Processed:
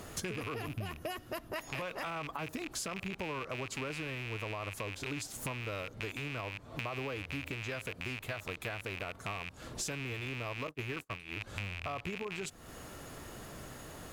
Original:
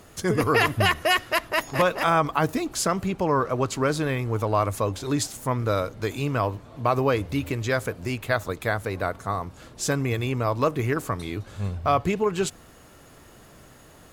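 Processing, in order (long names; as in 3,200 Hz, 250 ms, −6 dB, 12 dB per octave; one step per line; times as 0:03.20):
loose part that buzzes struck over −35 dBFS, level −14 dBFS
0:00.54–0:01.56: octave-band graphic EQ 250/500/1,000/2,000/4,000/8,000 Hz +3/−4/−6/−11/−7/−7 dB
brickwall limiter −16.5 dBFS, peak gain reduction 8.5 dB
0:10.67–0:11.41: noise gate −27 dBFS, range −38 dB
downward compressor 8 to 1, threshold −39 dBFS, peak gain reduction 17.5 dB
level +2.5 dB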